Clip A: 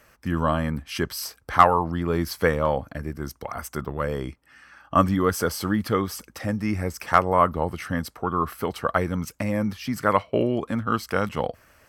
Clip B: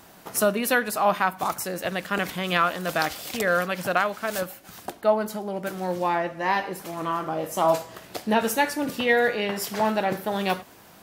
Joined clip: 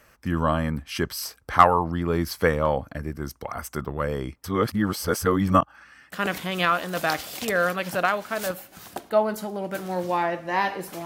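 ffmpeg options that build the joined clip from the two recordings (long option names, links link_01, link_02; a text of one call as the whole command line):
ffmpeg -i cue0.wav -i cue1.wav -filter_complex "[0:a]apad=whole_dur=11.05,atrim=end=11.05,asplit=2[link_01][link_02];[link_01]atrim=end=4.442[link_03];[link_02]atrim=start=4.438:end=6.122,asetpts=PTS-STARTPTS,areverse[link_04];[1:a]atrim=start=2.038:end=6.97[link_05];[link_03][link_04]acrossfade=duration=0.004:curve1=hsin:curve2=hsin[link_06];[link_06][link_05]acrossfade=duration=0.004:curve1=hsin:curve2=hsin" out.wav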